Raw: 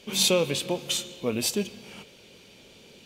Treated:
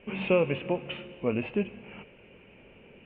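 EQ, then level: Chebyshev low-pass 2800 Hz, order 6; low shelf 63 Hz +8.5 dB; 0.0 dB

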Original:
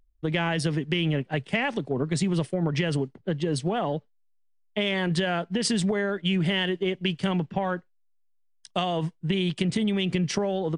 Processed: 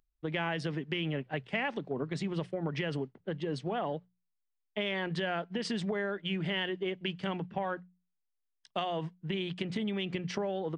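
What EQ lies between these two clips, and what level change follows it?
tape spacing loss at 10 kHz 30 dB; tilt +2.5 dB/oct; notches 60/120/180 Hz; -2.5 dB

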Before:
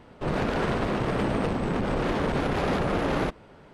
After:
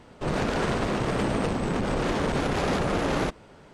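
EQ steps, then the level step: bell 7200 Hz +8.5 dB 1.3 oct; 0.0 dB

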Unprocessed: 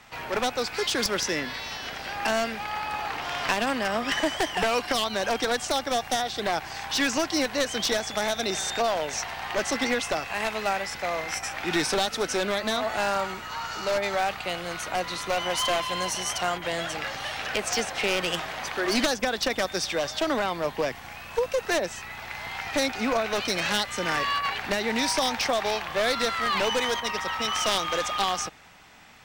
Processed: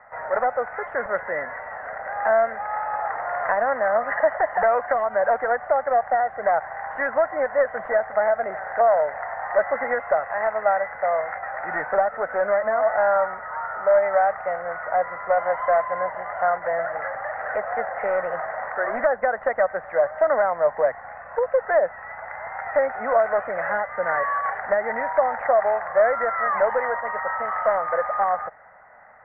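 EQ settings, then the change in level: rippled Chebyshev low-pass 2000 Hz, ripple 3 dB; resonant low shelf 450 Hz -9.5 dB, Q 3; +4.0 dB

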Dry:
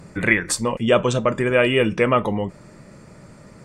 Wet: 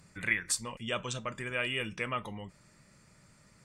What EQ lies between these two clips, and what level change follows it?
passive tone stack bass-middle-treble 5-5-5; -1.5 dB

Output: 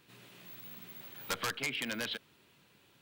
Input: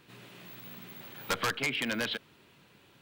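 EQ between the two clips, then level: high shelf 3900 Hz +6 dB; -6.0 dB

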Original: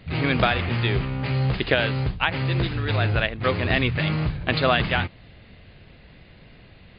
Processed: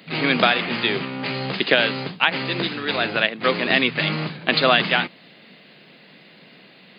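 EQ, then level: steep high-pass 170 Hz 36 dB/oct; high shelf 3900 Hz +10.5 dB; +2.5 dB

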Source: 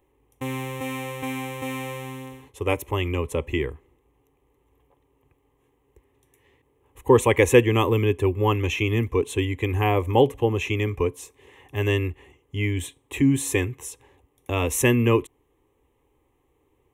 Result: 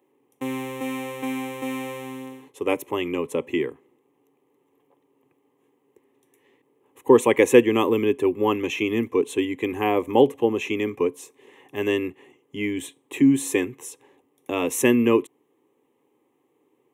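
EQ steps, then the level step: HPF 200 Hz 24 dB/oct; low shelf 300 Hz +9.5 dB; -1.5 dB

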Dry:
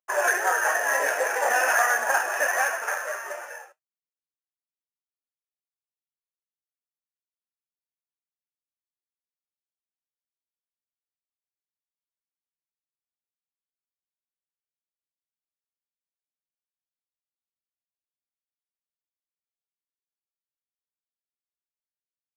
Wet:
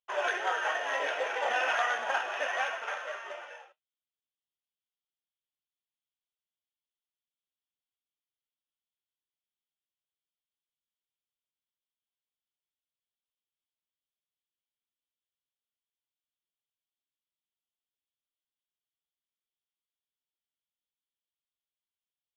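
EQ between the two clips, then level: synth low-pass 3300 Hz, resonance Q 5.7; low shelf 220 Hz +4.5 dB; notch 1700 Hz, Q 8; -7.5 dB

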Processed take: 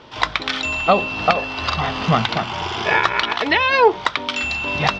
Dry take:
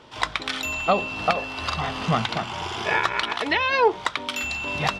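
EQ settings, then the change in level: LPF 6000 Hz 24 dB/oct; +5.5 dB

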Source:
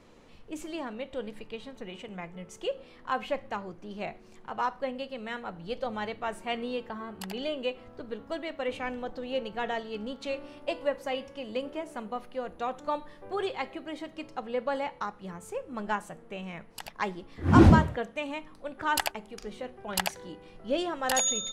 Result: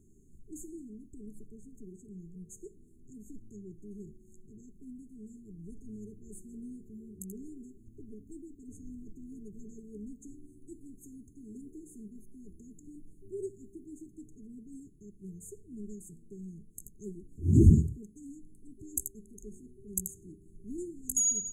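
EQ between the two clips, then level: brick-wall FIR band-stop 430–6300 Hz; bell 300 Hz -8 dB 1.4 oct; +1.0 dB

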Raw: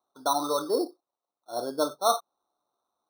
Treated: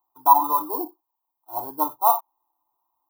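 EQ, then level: dynamic EQ 820 Hz, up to +5 dB, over -36 dBFS, Q 1.2; EQ curve 120 Hz 0 dB, 190 Hz -25 dB, 310 Hz -4 dB, 540 Hz -22 dB, 950 Hz +8 dB, 1400 Hz -19 dB, 4500 Hz -21 dB, 8900 Hz -12 dB, 14000 Hz +12 dB; +5.0 dB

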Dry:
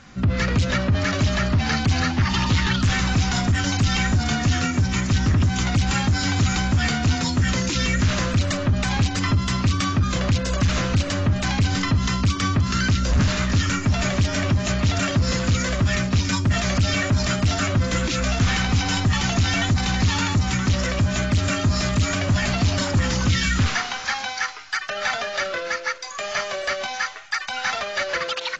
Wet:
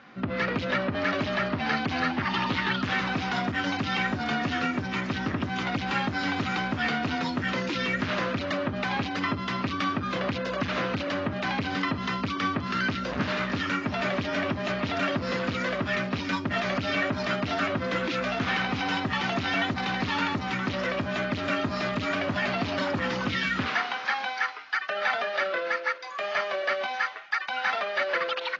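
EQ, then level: BPF 280–5900 Hz; air absorption 240 m; 0.0 dB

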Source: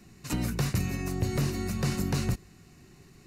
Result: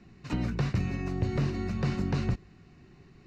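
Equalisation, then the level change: air absorption 190 m; 0.0 dB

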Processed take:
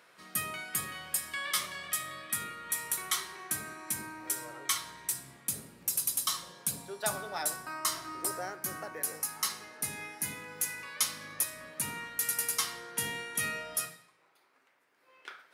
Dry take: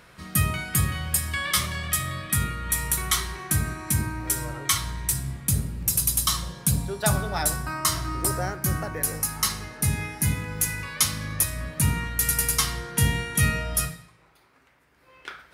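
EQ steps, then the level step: HPF 340 Hz 12 dB/oct; -7.5 dB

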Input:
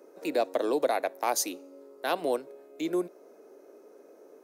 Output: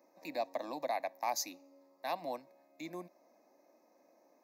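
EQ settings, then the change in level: fixed phaser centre 2100 Hz, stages 8; -5.0 dB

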